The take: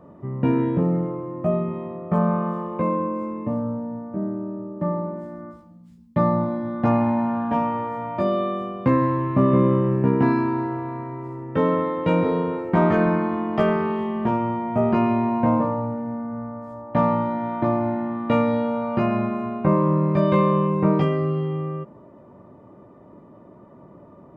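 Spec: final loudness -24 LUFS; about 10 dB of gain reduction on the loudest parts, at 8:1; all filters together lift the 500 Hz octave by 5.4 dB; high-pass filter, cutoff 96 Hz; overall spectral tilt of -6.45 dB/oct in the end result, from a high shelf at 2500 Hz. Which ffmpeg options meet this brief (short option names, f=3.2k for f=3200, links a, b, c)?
-af "highpass=96,equalizer=f=500:t=o:g=7,highshelf=f=2.5k:g=-3.5,acompressor=threshold=-22dB:ratio=8,volume=3dB"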